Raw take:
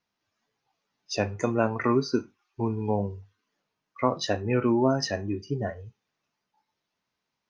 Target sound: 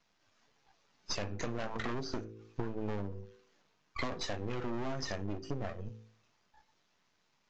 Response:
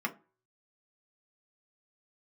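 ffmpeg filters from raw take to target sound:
-filter_complex "[0:a]aeval=exprs='max(val(0),0)':c=same,bandreject=f=54.91:t=h:w=4,bandreject=f=109.82:t=h:w=4,bandreject=f=164.73:t=h:w=4,bandreject=f=219.64:t=h:w=4,bandreject=f=274.55:t=h:w=4,bandreject=f=329.46:t=h:w=4,bandreject=f=384.37:t=h:w=4,bandreject=f=439.28:t=h:w=4,bandreject=f=494.19:t=h:w=4,asplit=2[a][b];[b]aeval=exprs='0.299*sin(PI/2*3.55*val(0)/0.299)':c=same,volume=-9.5dB[c];[a][c]amix=inputs=2:normalize=0,acompressor=threshold=-35dB:ratio=10,volume=2.5dB" -ar 16000 -c:a aac -b:a 48k

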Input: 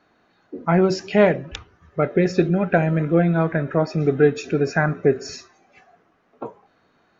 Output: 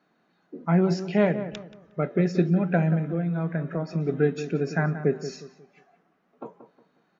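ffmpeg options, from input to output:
-filter_complex "[0:a]lowshelf=f=120:t=q:w=3:g=-10,asettb=1/sr,asplit=3[a][b][c];[a]atrim=end=2.954[d];[b]atrim=start=2.95:end=4.09,asetpts=PTS-STARTPTS,afade=t=in:d=0.004:c=qsin,afade=t=out:st=1.136:d=0.004:c=qsin,acompressor=threshold=-16dB:ratio=6[e];[c]atrim=start=4.086[f];[d][e]acrossfade=d=0.004:c1=hsin:c2=qsin[g];[g][f]acrossfade=d=0.004:c1=qsin:c2=hsin,asplit=2[h][i];[i]adelay=180,lowpass=f=1.7k:p=1,volume=-11dB,asplit=2[j][k];[k]adelay=180,lowpass=f=1.7k:p=1,volume=0.34,asplit=2[l][m];[m]adelay=180,lowpass=f=1.7k:p=1,volume=0.34,asplit=2[n][o];[o]adelay=180,lowpass=f=1.7k:p=1,volume=0.34[p];[h][j][l][n][p]amix=inputs=5:normalize=0,volume=-8dB"

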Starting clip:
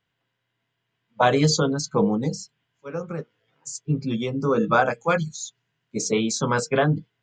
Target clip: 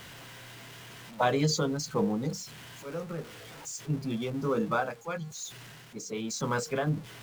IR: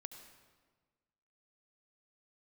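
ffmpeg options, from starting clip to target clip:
-filter_complex "[0:a]aeval=exprs='val(0)+0.5*0.0224*sgn(val(0))':c=same,asettb=1/sr,asplit=3[a][b][c];[a]atrim=end=4.554[d];[b]atrim=start=4.55:end=6.87,asetpts=PTS-STARTPTS,afade=t=in:d=0.004:c=qsin,afade=t=out:st=2.316:d=0.004:c=qsin,tremolo=f=1:d=0.58[e];[c]atrim=start=6.866[f];[d][e]acrossfade=d=0.004:c1=hsin:c2=qsin[g];[g][f]acrossfade=d=0.004:c1=qsin:c2=hsin,volume=-8dB"

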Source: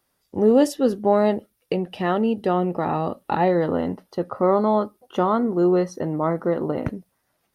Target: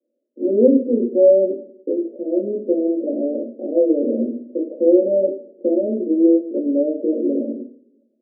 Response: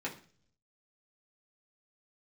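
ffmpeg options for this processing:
-filter_complex "[0:a]asuperpass=centerf=410:order=20:qfactor=0.96[a];[1:a]atrim=start_sample=2205,asetrate=33075,aresample=44100[b];[a][b]afir=irnorm=-1:irlink=0,asetrate=40517,aresample=44100,volume=-1dB"

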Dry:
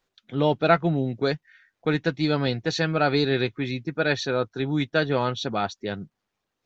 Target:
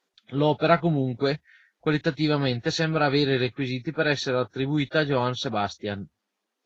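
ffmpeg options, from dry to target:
-af "equalizer=f=77:w=3.2:g=8" -ar 44100 -c:a libvorbis -b:a 32k

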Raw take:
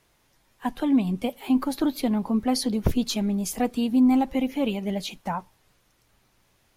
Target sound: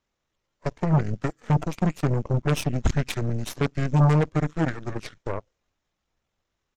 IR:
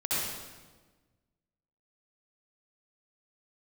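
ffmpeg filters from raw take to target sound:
-af "asetrate=25476,aresample=44100,atempo=1.73107,aresample=16000,aresample=44100,aeval=exprs='0.251*(cos(1*acos(clip(val(0)/0.251,-1,1)))-cos(1*PI/2))+0.0447*(cos(6*acos(clip(val(0)/0.251,-1,1)))-cos(6*PI/2))+0.0282*(cos(7*acos(clip(val(0)/0.251,-1,1)))-cos(7*PI/2))+0.0631*(cos(8*acos(clip(val(0)/0.251,-1,1)))-cos(8*PI/2))':c=same"

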